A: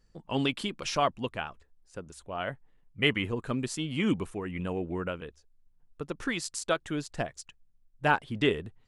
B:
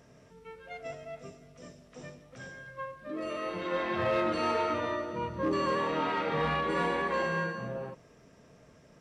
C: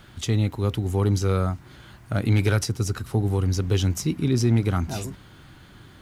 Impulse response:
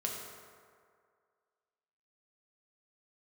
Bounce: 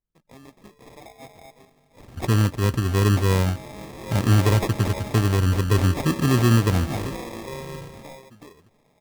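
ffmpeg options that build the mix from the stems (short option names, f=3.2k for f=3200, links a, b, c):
-filter_complex "[0:a]acompressor=threshold=-29dB:ratio=6,agate=range=-8dB:threshold=-59dB:ratio=16:detection=peak,volume=-14dB[a];[1:a]lowshelf=f=250:g=-6.5,adelay=350,volume=-4dB[b];[2:a]equalizer=f=1.4k:w=0.9:g=-7.5,adelay=2000,volume=3dB[c];[a][b][c]amix=inputs=3:normalize=0,equalizer=f=3.5k:t=o:w=0.77:g=3.5,acrusher=samples=30:mix=1:aa=0.000001"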